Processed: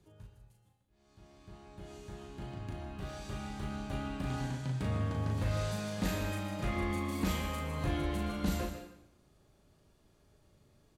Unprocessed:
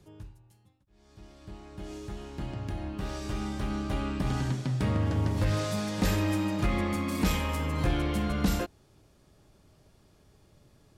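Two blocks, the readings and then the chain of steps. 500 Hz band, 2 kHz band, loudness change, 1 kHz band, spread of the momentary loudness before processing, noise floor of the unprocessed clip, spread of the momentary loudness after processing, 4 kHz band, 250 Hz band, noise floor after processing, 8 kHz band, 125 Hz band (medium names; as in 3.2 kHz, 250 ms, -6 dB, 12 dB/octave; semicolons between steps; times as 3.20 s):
-5.0 dB, -5.0 dB, -6.0 dB, -5.0 dB, 13 LU, -62 dBFS, 15 LU, -6.0 dB, -6.5 dB, -68 dBFS, -5.5 dB, -6.0 dB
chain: band-stop 5.3 kHz, Q 14; doubling 37 ms -3 dB; plate-style reverb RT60 0.73 s, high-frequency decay 0.95×, pre-delay 105 ms, DRR 7 dB; trim -8 dB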